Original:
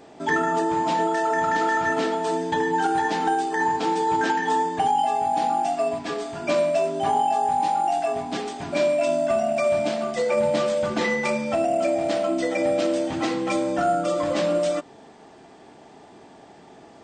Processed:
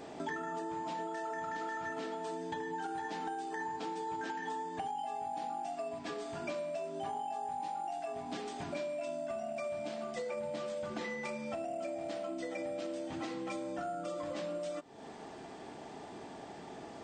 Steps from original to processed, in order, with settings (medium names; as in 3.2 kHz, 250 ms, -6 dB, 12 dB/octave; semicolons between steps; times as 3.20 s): compression 5:1, threshold -39 dBFS, peak gain reduction 18.5 dB